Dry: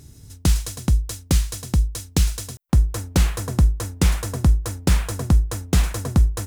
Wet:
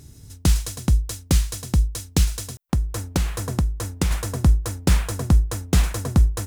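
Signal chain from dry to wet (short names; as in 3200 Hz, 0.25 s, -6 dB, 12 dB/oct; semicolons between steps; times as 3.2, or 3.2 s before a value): 2.24–4.11 compressor, threshold -18 dBFS, peak gain reduction 7 dB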